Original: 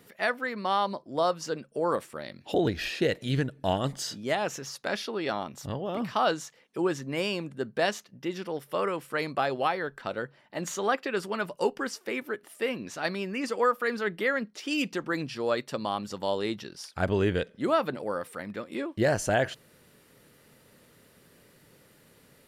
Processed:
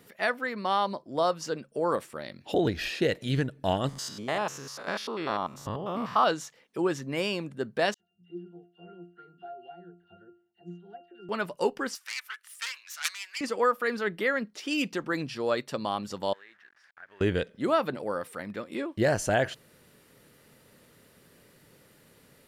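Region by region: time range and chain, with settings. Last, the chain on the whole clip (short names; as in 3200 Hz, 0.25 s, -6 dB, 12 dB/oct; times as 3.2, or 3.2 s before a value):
3.89–6.24 stepped spectrum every 0.1 s + bell 1100 Hz +9.5 dB 0.55 oct
7.94–11.29 bell 1100 Hz -10.5 dB 0.48 oct + octave resonator F, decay 0.39 s + dispersion lows, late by 57 ms, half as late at 1500 Hz
11.95–13.41 self-modulated delay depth 0.29 ms + HPF 1300 Hz 24 dB/oct + bell 8400 Hz +5.5 dB 1.7 oct
16.33–17.21 level-crossing sampler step -41.5 dBFS + band-pass 1700 Hz, Q 6.5 + compressor 2:1, threshold -49 dBFS
whole clip: dry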